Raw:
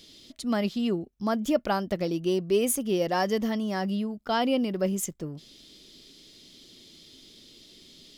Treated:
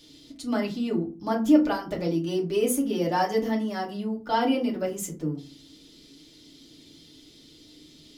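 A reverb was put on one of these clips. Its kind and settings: FDN reverb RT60 0.34 s, low-frequency decay 1.6×, high-frequency decay 0.55×, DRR -3 dB; trim -4.5 dB

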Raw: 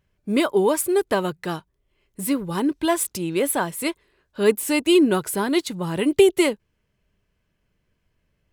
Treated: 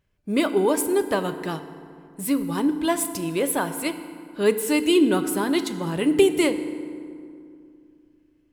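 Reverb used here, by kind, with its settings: FDN reverb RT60 2.4 s, low-frequency decay 1.35×, high-frequency decay 0.55×, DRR 9.5 dB; trim -2 dB

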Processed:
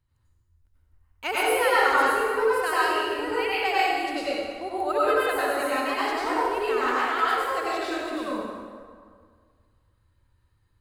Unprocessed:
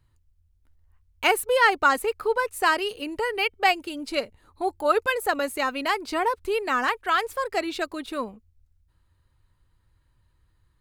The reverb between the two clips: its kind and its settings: plate-style reverb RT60 1.9 s, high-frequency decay 0.65×, pre-delay 80 ms, DRR -9 dB; trim -9.5 dB

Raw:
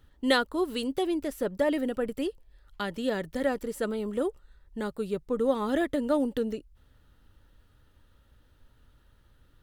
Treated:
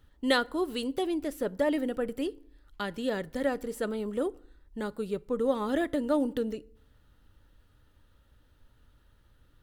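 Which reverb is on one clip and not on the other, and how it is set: FDN reverb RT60 0.61 s, low-frequency decay 1.2×, high-frequency decay 0.7×, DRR 19.5 dB; trim -1.5 dB

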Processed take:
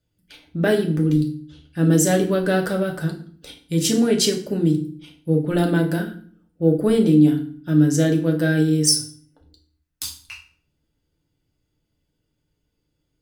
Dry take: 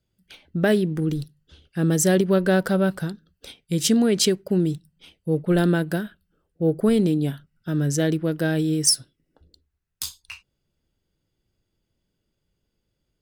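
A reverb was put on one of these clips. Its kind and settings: FDN reverb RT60 0.48 s, low-frequency decay 1.5×, high-frequency decay 0.85×, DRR 1 dB; trim -1 dB

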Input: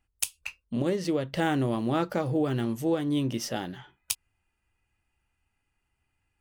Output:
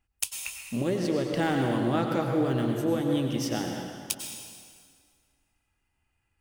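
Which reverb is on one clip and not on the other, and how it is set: plate-style reverb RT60 2 s, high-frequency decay 0.85×, pre-delay 85 ms, DRR 2 dB; trim -1 dB

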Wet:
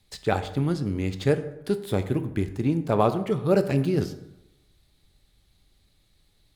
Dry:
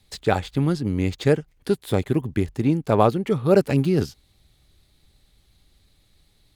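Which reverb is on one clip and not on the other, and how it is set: plate-style reverb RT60 0.92 s, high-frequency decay 0.55×, DRR 9 dB; trim -4 dB

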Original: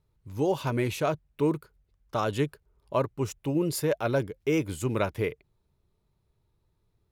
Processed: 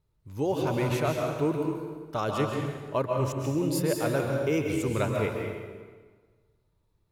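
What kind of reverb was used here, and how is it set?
plate-style reverb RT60 1.5 s, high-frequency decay 0.8×, pre-delay 120 ms, DRR 0.5 dB; trim -2 dB

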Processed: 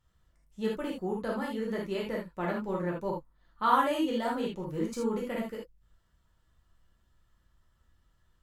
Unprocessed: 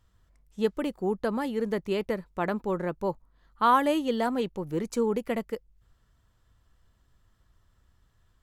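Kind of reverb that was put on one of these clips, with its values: gated-style reverb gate 100 ms flat, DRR -3.5 dB; trim -8 dB

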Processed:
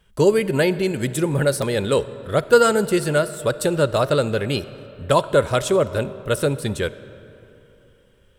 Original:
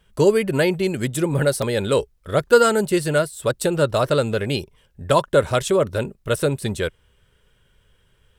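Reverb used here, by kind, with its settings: algorithmic reverb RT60 3.2 s, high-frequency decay 0.6×, pre-delay 10 ms, DRR 15 dB

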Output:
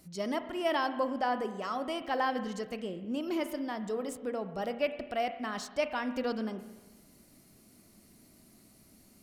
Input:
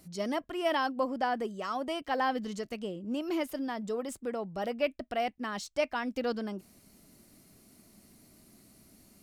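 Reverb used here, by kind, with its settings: spring tank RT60 1.2 s, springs 32/36 ms, chirp 80 ms, DRR 9.5 dB; trim -1 dB

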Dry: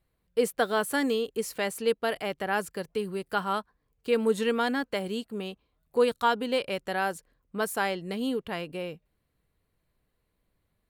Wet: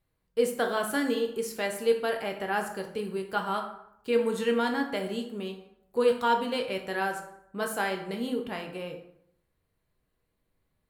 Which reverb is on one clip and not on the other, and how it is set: plate-style reverb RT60 0.77 s, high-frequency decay 0.6×, DRR 2.5 dB; trim -3 dB

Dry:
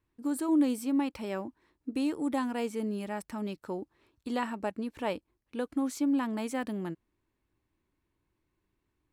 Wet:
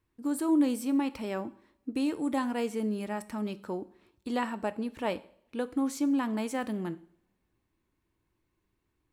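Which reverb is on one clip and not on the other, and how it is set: two-slope reverb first 0.53 s, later 1.9 s, from -26 dB, DRR 12.5 dB; trim +1 dB

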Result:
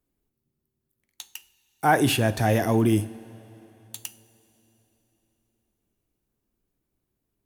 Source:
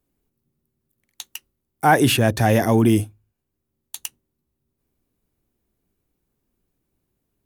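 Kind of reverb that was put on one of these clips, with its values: two-slope reverb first 0.39 s, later 3.7 s, from -18 dB, DRR 11 dB; trim -5 dB

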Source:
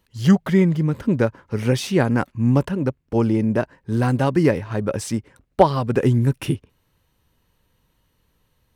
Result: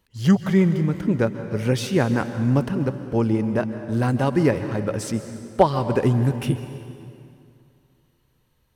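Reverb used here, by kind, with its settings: plate-style reverb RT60 2.5 s, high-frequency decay 0.8×, pre-delay 120 ms, DRR 10 dB; trim -2 dB

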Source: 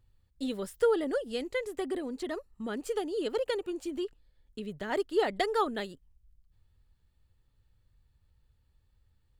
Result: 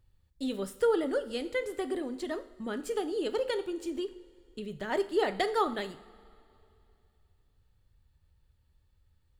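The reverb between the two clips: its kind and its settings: two-slope reverb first 0.55 s, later 2.8 s, from -17 dB, DRR 9.5 dB

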